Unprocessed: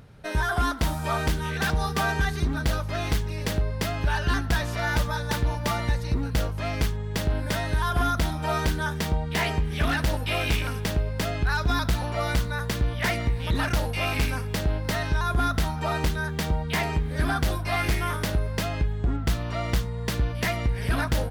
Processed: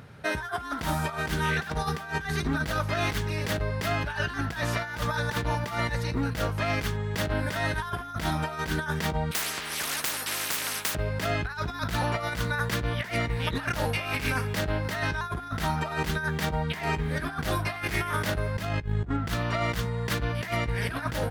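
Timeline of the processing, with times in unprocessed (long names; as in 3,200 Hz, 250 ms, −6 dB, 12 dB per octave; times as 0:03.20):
0:09.31–0:10.95: every bin compressed towards the loudest bin 10 to 1
0:18.55–0:19.09: low-shelf EQ 190 Hz +7 dB
whole clip: high-pass filter 84 Hz 12 dB per octave; parametric band 1,600 Hz +5 dB 1.4 octaves; compressor whose output falls as the input rises −28 dBFS, ratio −0.5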